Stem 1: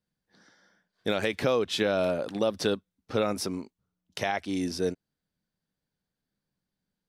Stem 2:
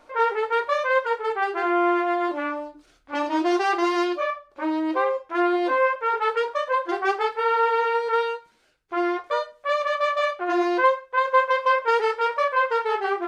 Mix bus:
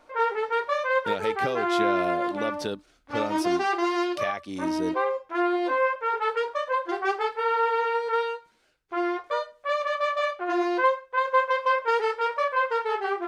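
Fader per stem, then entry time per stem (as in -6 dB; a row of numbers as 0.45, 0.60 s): -4.5, -3.0 dB; 0.00, 0.00 s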